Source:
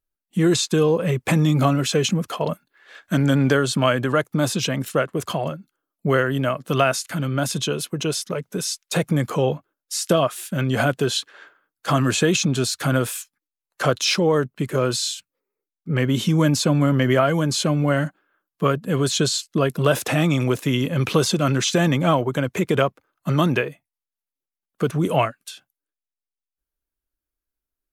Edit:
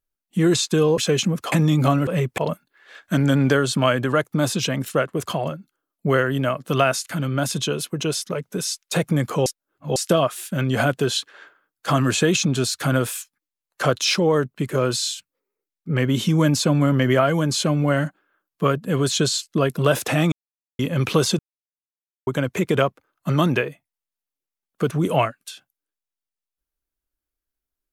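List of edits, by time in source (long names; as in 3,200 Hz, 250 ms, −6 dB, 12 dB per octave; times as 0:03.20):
0:00.98–0:01.29: swap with 0:01.84–0:02.38
0:09.46–0:09.96: reverse
0:20.32–0:20.79: silence
0:21.39–0:22.27: silence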